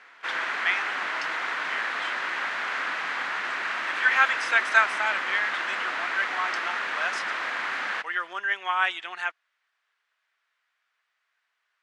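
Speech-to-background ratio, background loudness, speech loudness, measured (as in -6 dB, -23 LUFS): 1.5 dB, -28.5 LUFS, -27.0 LUFS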